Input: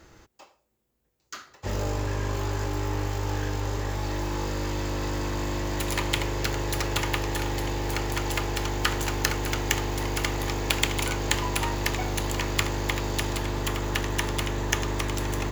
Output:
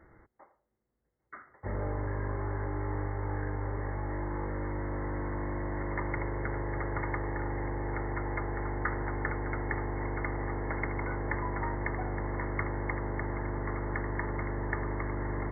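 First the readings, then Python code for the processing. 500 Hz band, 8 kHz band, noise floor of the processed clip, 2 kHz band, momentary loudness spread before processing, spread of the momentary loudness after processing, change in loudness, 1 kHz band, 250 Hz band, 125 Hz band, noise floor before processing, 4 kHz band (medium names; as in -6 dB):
-5.0 dB, under -40 dB, -79 dBFS, -6.5 dB, 4 LU, 2 LU, -6.5 dB, -5.0 dB, -5.0 dB, -5.0 dB, -72 dBFS, under -40 dB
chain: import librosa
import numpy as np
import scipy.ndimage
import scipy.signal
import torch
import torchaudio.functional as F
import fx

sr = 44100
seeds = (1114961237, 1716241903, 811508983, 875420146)

y = fx.brickwall_lowpass(x, sr, high_hz=2200.0)
y = F.gain(torch.from_numpy(y), -5.0).numpy()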